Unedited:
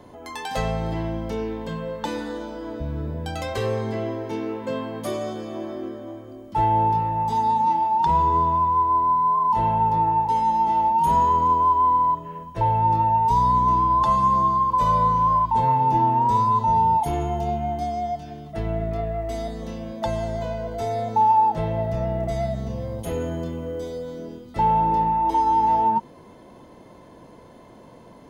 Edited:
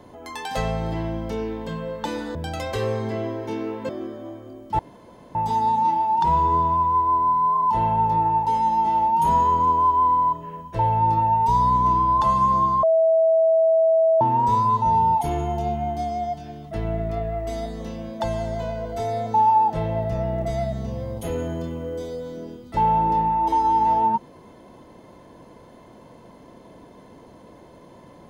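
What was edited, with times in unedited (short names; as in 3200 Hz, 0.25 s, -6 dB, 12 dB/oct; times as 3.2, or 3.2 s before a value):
2.35–3.17 cut
4.71–5.71 cut
6.61–7.17 room tone
14.65–16.03 bleep 650 Hz -14 dBFS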